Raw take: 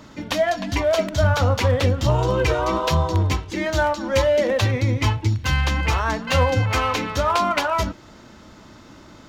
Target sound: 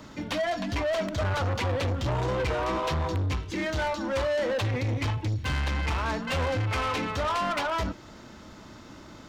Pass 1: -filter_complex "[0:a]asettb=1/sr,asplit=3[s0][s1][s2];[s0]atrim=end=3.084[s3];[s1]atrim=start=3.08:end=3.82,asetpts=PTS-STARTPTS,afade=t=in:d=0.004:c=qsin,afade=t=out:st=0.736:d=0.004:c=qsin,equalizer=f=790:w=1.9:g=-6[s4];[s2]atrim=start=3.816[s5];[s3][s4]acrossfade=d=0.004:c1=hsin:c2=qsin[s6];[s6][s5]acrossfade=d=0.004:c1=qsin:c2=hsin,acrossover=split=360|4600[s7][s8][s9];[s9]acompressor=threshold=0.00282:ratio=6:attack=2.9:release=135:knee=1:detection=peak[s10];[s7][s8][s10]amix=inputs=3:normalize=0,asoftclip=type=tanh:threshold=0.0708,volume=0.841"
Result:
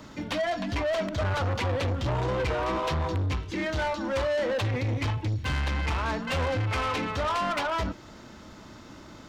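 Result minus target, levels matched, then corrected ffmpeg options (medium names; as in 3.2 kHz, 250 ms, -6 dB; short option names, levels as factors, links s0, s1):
compression: peak gain reduction +6 dB
-filter_complex "[0:a]asettb=1/sr,asplit=3[s0][s1][s2];[s0]atrim=end=3.084[s3];[s1]atrim=start=3.08:end=3.82,asetpts=PTS-STARTPTS,afade=t=in:d=0.004:c=qsin,afade=t=out:st=0.736:d=0.004:c=qsin,equalizer=f=790:w=1.9:g=-6[s4];[s2]atrim=start=3.816[s5];[s3][s4]acrossfade=d=0.004:c1=hsin:c2=qsin[s6];[s6][s5]acrossfade=d=0.004:c1=qsin:c2=hsin,acrossover=split=360|4600[s7][s8][s9];[s9]acompressor=threshold=0.00668:ratio=6:attack=2.9:release=135:knee=1:detection=peak[s10];[s7][s8][s10]amix=inputs=3:normalize=0,asoftclip=type=tanh:threshold=0.0708,volume=0.841"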